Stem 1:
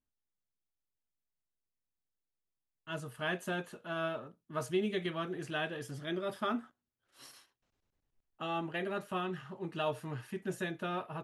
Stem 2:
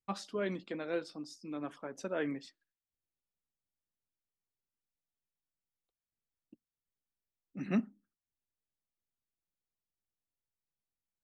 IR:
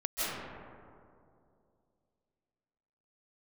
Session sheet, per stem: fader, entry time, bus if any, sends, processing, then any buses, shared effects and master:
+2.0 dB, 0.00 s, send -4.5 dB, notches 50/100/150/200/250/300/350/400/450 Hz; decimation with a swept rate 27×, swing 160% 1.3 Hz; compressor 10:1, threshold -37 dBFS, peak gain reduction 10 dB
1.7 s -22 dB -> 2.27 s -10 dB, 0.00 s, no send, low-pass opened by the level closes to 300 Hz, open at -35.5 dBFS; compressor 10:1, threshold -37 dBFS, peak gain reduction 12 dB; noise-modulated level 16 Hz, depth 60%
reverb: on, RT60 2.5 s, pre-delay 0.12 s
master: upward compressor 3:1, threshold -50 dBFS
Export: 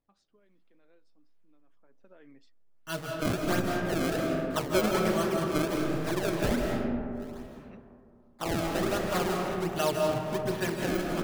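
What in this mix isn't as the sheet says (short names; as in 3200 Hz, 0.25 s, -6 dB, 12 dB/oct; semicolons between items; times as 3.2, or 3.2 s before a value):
stem 1: missing compressor 10:1, threshold -37 dBFS, peak gain reduction 10 dB; master: missing upward compressor 3:1, threshold -50 dBFS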